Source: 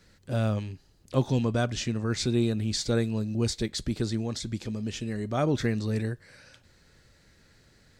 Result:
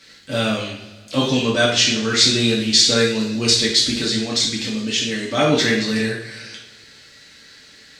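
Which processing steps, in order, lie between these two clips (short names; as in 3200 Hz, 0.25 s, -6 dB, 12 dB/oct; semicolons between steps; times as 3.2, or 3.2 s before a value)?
weighting filter D; two-slope reverb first 0.54 s, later 2 s, from -18 dB, DRR -5 dB; gain +3.5 dB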